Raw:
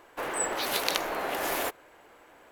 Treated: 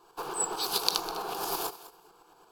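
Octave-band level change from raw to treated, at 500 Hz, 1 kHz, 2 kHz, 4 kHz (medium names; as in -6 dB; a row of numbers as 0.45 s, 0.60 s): -5.0 dB, -1.5 dB, -10.5 dB, +1.5 dB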